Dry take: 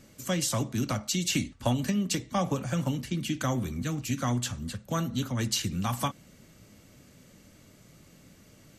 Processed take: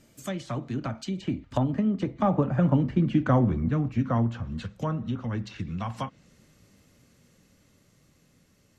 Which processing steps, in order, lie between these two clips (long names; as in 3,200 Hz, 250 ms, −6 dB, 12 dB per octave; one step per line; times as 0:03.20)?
source passing by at 0:03.10, 20 m/s, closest 16 metres
treble cut that deepens with the level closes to 1,200 Hz, closed at −33.5 dBFS
level +8.5 dB